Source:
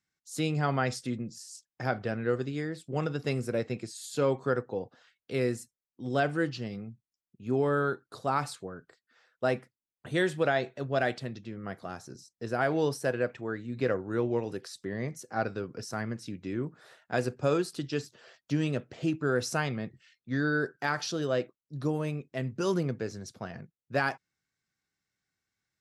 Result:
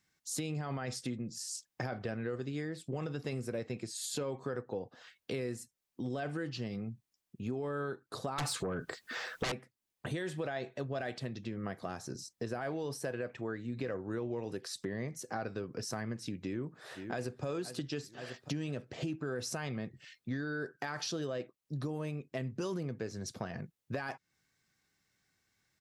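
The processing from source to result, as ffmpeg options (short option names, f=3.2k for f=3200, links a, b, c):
-filter_complex "[0:a]asettb=1/sr,asplit=3[a][b][c];[a]atrim=end=8.384[d];[b]atrim=start=8.38:end=9.52,asetpts=PTS-STARTPTS,afade=t=in:d=0.004:c=qsin,afade=t=out:st=1.136:d=0.004:c=qsin,aeval=exprs='0.2*sin(PI/2*7.08*val(0)/0.2)':c=same[e];[c]atrim=start=9.516[f];[d][e]acrossfade=d=0.004:c1=hsin:c2=qsin[g];[g][f]acrossfade=d=0.004:c1=qsin:c2=hsin,asplit=2[h][i];[i]afade=t=in:st=16.41:d=0.01,afade=t=out:st=17.44:d=0.01,aecho=0:1:520|1040|1560|2080|2600:0.133352|0.0733437|0.040339|0.0221865|0.0122026[j];[h][j]amix=inputs=2:normalize=0,bandreject=f=1.4k:w=17,alimiter=limit=-22dB:level=0:latency=1:release=17,acompressor=threshold=-45dB:ratio=4,volume=8dB"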